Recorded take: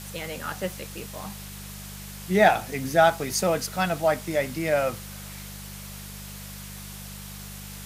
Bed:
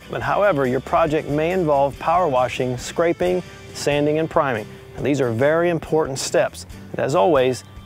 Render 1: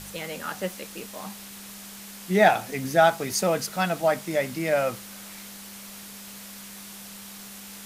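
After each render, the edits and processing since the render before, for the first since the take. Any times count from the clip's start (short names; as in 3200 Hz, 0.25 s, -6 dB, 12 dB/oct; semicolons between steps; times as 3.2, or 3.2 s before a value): de-hum 50 Hz, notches 3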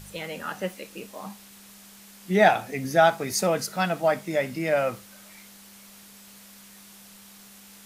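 noise print and reduce 7 dB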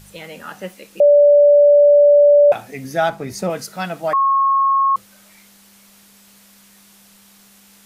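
1–2.52 bleep 581 Hz -6.5 dBFS; 3.09–3.5 tilt -2 dB/oct; 4.13–4.96 bleep 1090 Hz -12 dBFS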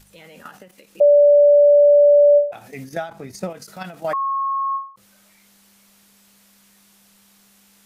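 level quantiser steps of 11 dB; ending taper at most 140 dB/s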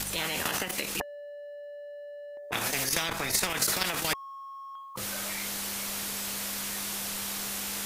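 compressor 10:1, threshold -19 dBFS, peak gain reduction 9 dB; spectral compressor 10:1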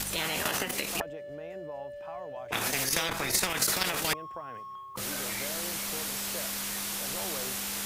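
add bed -25.5 dB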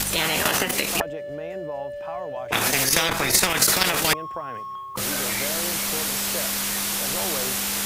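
gain +8.5 dB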